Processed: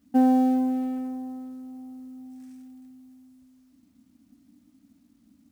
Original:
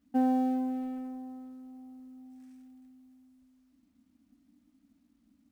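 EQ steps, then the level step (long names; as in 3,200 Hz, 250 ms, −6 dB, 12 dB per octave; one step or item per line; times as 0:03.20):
bass and treble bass −7 dB, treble +5 dB
parametric band 120 Hz +13.5 dB 1.9 octaves
+5.0 dB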